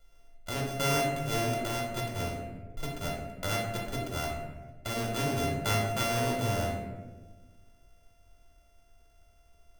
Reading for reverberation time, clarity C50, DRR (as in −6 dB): 1.3 s, 2.5 dB, −2.5 dB